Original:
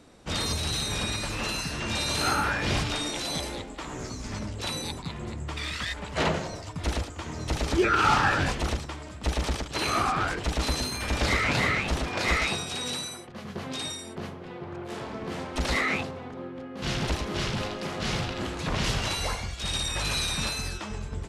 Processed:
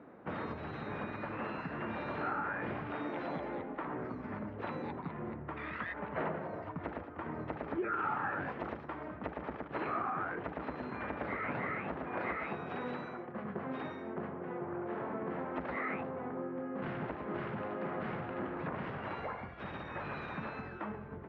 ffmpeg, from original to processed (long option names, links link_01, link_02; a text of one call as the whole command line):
ffmpeg -i in.wav -filter_complex "[0:a]asettb=1/sr,asplit=3[link_01][link_02][link_03];[link_01]atrim=end=8.424[link_04];[link_02]atrim=start=8.42:end=9.08,asetpts=PTS-STARTPTS,afade=type=in:duration=0.004:curve=qsin,afade=type=out:start_time=0.656:duration=0.004:curve=qsin,bass=frequency=250:gain=-2,treble=frequency=4000:gain=8[link_05];[link_03]atrim=start=9.076[link_06];[link_04][link_05]acrossfade=duration=0.004:curve1=hsin:curve2=qsin[link_07];[link_07][link_06]acrossfade=duration=0.004:curve1=qsin:curve2=hsin,lowpass=frequency=1800:width=0.5412,lowpass=frequency=1800:width=1.3066,acompressor=threshold=-36dB:ratio=4,highpass=170,volume=1.5dB" out.wav